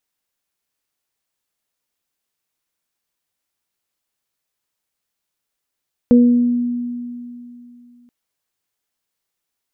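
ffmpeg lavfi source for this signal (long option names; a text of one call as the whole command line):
ffmpeg -f lavfi -i "aevalsrc='0.501*pow(10,-3*t/2.86)*sin(2*PI*242*t)+0.224*pow(10,-3*t/0.68)*sin(2*PI*484*t)':duration=1.98:sample_rate=44100" out.wav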